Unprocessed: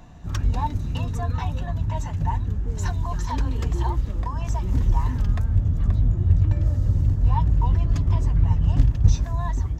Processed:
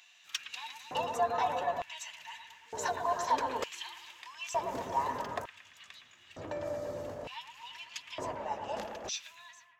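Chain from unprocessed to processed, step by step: fade out at the end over 0.68 s; bucket-brigade echo 114 ms, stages 2048, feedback 66%, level -7 dB; 8.35–9.31 s: frequency shift -57 Hz; LFO high-pass square 0.55 Hz 560–2700 Hz; trim -1 dB

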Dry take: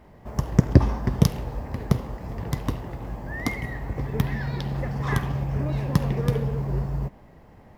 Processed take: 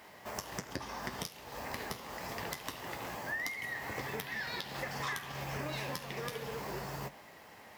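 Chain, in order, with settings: high-pass 590 Hz 6 dB/octave; tilt shelf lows -7 dB, about 1.5 kHz; compression 20:1, threshold -40 dBFS, peak gain reduction 22.5 dB; flange 0.27 Hz, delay 9.5 ms, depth 3.2 ms, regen -65%; overload inside the chain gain 34 dB; trim +10 dB

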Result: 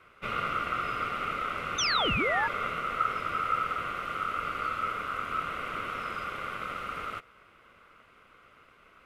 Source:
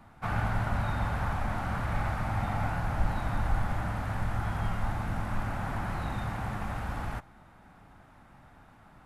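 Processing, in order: painted sound fall, 1.78–2.48 s, 350–5100 Hz -25 dBFS; ring modulator 1.3 kHz

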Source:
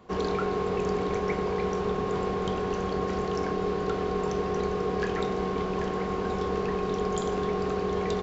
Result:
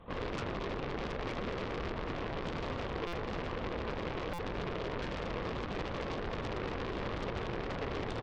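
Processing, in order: tracing distortion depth 0.48 ms; speakerphone echo 120 ms, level -12 dB; LPC vocoder at 8 kHz whisper; peak limiter -24 dBFS, peak gain reduction 8.5 dB; Chebyshev shaper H 3 -10 dB, 5 -11 dB, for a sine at -24 dBFS; buffer glitch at 3.07/4.33 s, samples 256, times 9; trim -3.5 dB

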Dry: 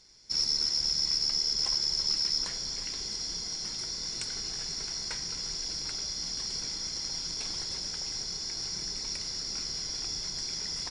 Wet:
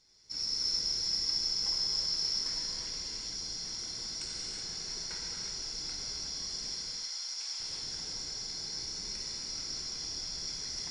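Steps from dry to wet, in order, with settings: 6.69–7.60 s: high-pass 920 Hz 12 dB/octave; flange 1.2 Hz, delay 6.8 ms, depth 7 ms, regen -82%; gated-style reverb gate 400 ms flat, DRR -4.5 dB; trim -5 dB

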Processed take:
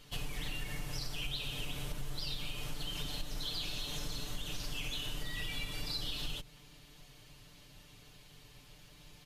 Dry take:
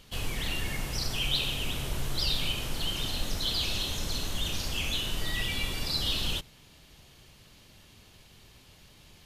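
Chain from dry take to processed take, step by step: octave divider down 2 oct, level -1 dB; comb 6.8 ms, depth 78%; compression, threshold -30 dBFS, peak gain reduction 11 dB; trim -4.5 dB

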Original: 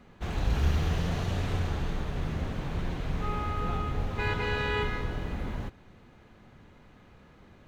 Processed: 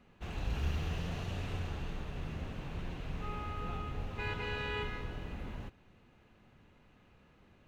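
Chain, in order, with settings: peaking EQ 2.7 kHz +7.5 dB 0.23 oct; trim -8.5 dB

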